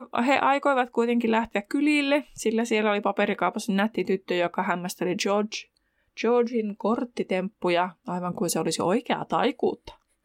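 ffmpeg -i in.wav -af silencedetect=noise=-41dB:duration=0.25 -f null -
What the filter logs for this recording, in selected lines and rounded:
silence_start: 5.63
silence_end: 6.17 | silence_duration: 0.54
silence_start: 9.93
silence_end: 10.25 | silence_duration: 0.32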